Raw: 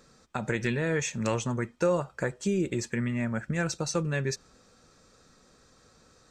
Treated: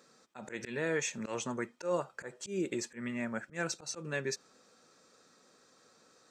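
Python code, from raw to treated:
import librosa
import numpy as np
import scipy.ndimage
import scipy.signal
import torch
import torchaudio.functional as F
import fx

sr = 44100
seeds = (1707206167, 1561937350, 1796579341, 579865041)

y = scipy.signal.sosfilt(scipy.signal.butter(2, 250.0, 'highpass', fs=sr, output='sos'), x)
y = fx.auto_swell(y, sr, attack_ms=125.0)
y = F.gain(torch.from_numpy(y), -3.0).numpy()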